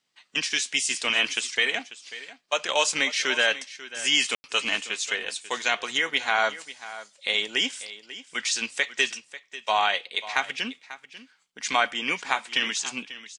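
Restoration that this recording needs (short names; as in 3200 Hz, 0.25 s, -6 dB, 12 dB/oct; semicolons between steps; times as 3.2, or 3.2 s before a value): room tone fill 4.35–4.44; inverse comb 0.542 s -15.5 dB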